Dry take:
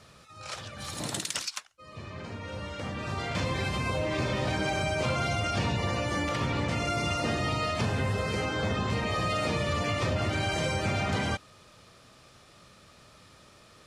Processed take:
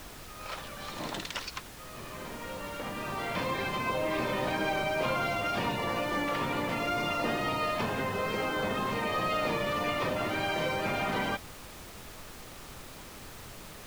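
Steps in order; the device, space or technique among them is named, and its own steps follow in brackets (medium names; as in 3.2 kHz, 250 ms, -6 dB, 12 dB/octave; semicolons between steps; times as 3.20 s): horn gramophone (band-pass 210–3500 Hz; peaking EQ 990 Hz +4.5 dB 0.26 oct; wow and flutter 17 cents; pink noise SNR 13 dB)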